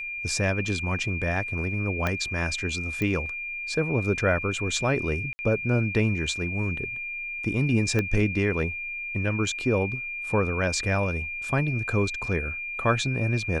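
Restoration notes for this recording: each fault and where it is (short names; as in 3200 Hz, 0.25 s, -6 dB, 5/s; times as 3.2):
tone 2400 Hz -31 dBFS
2.07 pop -12 dBFS
3.02 pop -15 dBFS
5.33–5.39 gap 60 ms
7.99 pop -13 dBFS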